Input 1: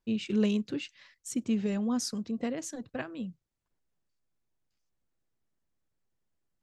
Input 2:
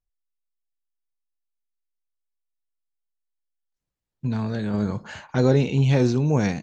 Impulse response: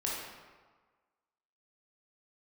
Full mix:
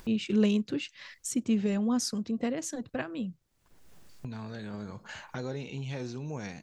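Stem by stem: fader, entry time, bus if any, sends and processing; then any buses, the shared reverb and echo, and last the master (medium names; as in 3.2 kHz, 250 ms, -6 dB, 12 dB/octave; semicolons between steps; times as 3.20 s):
+2.0 dB, 0.00 s, no send, none
-17.0 dB, 0.00 s, no send, tilt shelf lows -3.5 dB, about 730 Hz; gate with hold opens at -30 dBFS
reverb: none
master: upward compressor, threshold -31 dBFS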